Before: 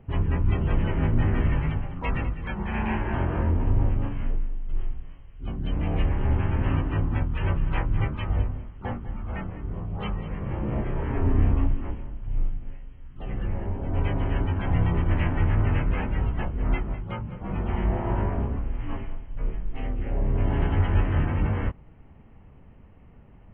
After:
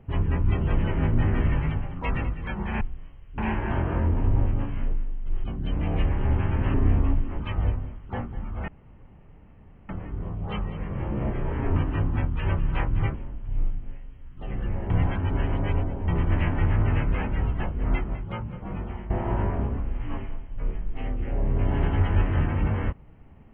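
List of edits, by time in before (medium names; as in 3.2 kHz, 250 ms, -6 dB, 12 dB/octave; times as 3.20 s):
4.87–5.44 s: move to 2.81 s
6.74–8.12 s: swap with 11.27–11.93 s
9.40 s: insert room tone 1.21 s
13.69–14.87 s: reverse
17.36–17.89 s: fade out linear, to -16 dB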